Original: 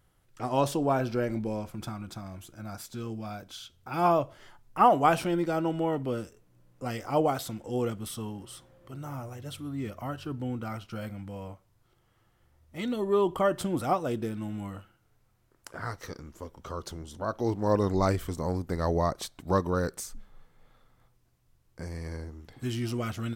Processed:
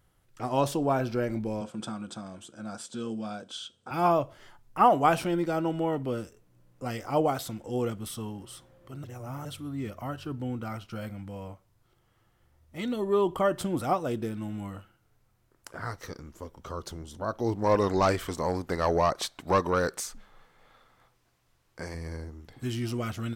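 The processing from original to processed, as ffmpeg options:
ffmpeg -i in.wav -filter_complex "[0:a]asettb=1/sr,asplit=3[link_01][link_02][link_03];[link_01]atrim=end=1.614[link_04];[link_02]atrim=start=1.61:end=3.91,asetpts=PTS-STARTPTS,afade=type=in:duration=0.004:curve=qsin,afade=type=out:start_time=2.296:duration=0.004:curve=qsin,highpass=170,equalizer=frequency=220:width_type=q:width=4:gain=6,equalizer=frequency=500:width_type=q:width=4:gain=7,equalizer=frequency=1500:width_type=q:width=4:gain=3,equalizer=frequency=2100:width_type=q:width=4:gain=-7,equalizer=frequency=3200:width_type=q:width=4:gain=7,equalizer=frequency=8300:width_type=q:width=4:gain=9,lowpass=frequency=8900:width=0.5412,lowpass=frequency=8900:width=1.3066[link_05];[link_03]atrim=start=3.906[link_06];[link_04][link_05]acrossfade=duration=0.004:curve1=hsin:curve2=qsin[link_07];[link_07][link_06]acrossfade=duration=0.004:curve1=qsin:curve2=hsin,asettb=1/sr,asplit=3[link_08][link_09][link_10];[link_08]atrim=end=17.644[link_11];[link_09]atrim=start=17.64:end=21.95,asetpts=PTS-STARTPTS,afade=type=in:duration=0.004:curve=qsin,afade=type=out:start_time=4.306:duration=0.004:curve=qsin,asplit=2[link_12][link_13];[link_13]highpass=frequency=720:poles=1,volume=13dB,asoftclip=type=tanh:threshold=-12dB[link_14];[link_12][link_14]amix=inputs=2:normalize=0,lowpass=frequency=4800:poles=1,volume=-6dB[link_15];[link_10]atrim=start=21.946[link_16];[link_11][link_15]acrossfade=duration=0.004:curve1=hsin:curve2=qsin[link_17];[link_17][link_16]acrossfade=duration=0.004:curve1=qsin:curve2=hsin,asplit=3[link_18][link_19][link_20];[link_18]atrim=end=9.042[link_21];[link_19]atrim=start=9.038:end=9.452,asetpts=PTS-STARTPTS,areverse[link_22];[link_20]atrim=start=9.448[link_23];[link_21][link_22]acrossfade=duration=0.004:curve1=hsin:curve2=hsin[link_24];[link_24][link_23]acrossfade=duration=0.004:curve1=hsin:curve2=hsin" out.wav

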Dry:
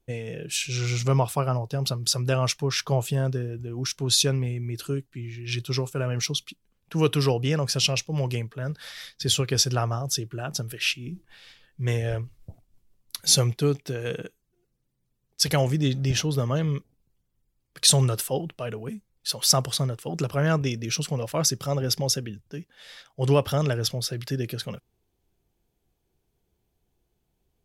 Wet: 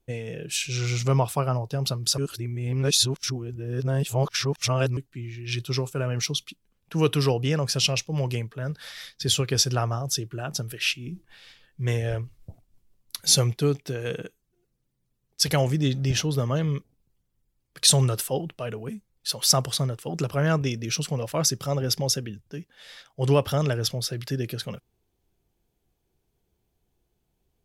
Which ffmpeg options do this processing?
ffmpeg -i in.wav -filter_complex "[0:a]asplit=3[link_01][link_02][link_03];[link_01]atrim=end=2.182[link_04];[link_02]atrim=start=2.178:end=4.972,asetpts=PTS-STARTPTS,areverse[link_05];[link_03]atrim=start=4.968[link_06];[link_04][link_05]acrossfade=duration=0.004:curve1=hsin:curve2=hsin[link_07];[link_07][link_06]acrossfade=duration=0.004:curve1=hsin:curve2=hsin" out.wav

